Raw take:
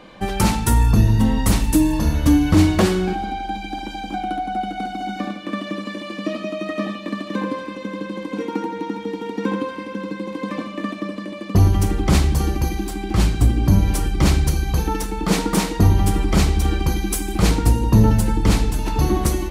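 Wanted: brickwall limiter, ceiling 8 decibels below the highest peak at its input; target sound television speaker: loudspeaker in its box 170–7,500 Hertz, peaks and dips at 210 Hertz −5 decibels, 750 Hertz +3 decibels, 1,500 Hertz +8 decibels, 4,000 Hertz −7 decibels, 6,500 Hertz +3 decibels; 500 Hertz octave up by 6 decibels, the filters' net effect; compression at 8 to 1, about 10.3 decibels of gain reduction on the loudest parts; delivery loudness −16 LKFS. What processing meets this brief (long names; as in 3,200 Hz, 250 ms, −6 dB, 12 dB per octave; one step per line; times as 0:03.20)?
parametric band 500 Hz +7.5 dB
downward compressor 8 to 1, threshold −19 dBFS
brickwall limiter −17 dBFS
loudspeaker in its box 170–7,500 Hz, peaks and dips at 210 Hz −5 dB, 750 Hz +3 dB, 1,500 Hz +8 dB, 4,000 Hz −7 dB, 6,500 Hz +3 dB
level +11.5 dB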